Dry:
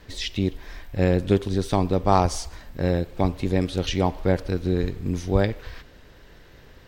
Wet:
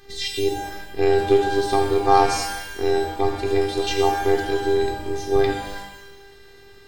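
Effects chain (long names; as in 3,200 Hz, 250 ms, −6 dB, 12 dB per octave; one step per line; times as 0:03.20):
phases set to zero 397 Hz
low-shelf EQ 78 Hz −7.5 dB
reverb with rising layers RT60 1 s, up +12 semitones, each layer −8 dB, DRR 1 dB
level +3.5 dB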